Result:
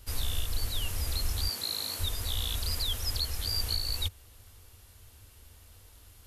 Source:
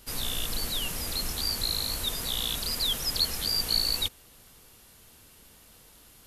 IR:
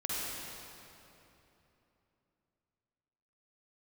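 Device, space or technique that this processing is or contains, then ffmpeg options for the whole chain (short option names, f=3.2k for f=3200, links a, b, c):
car stereo with a boomy subwoofer: -filter_complex "[0:a]asettb=1/sr,asplit=3[a][b][c];[a]atrim=end=1.484[d];[b]atrim=start=1.48:end=1.99,asetpts=PTS-STARTPTS,afade=t=in:d=0.004:c=qsin,afade=t=out:st=0.506:d=0.004:c=qsin,highpass=f=160:w=0.5412,highpass=f=160:w=1.3066[e];[c]atrim=start=1.986[f];[d][e]acrossfade=d=0.004:c1=hsin:c2=qsin[g];[g][f]acrossfade=d=0.004:c1=qsin:c2=hsin,lowshelf=f=120:t=q:w=3:g=8.5,alimiter=limit=-16dB:level=0:latency=1:release=441,volume=-3.5dB"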